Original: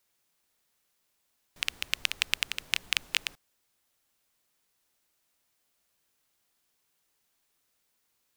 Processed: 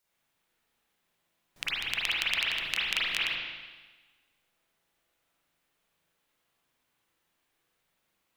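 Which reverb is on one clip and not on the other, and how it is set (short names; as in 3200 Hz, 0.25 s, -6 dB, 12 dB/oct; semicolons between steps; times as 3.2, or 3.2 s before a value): spring tank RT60 1.3 s, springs 36/42 ms, chirp 40 ms, DRR -8.5 dB; gain -5.5 dB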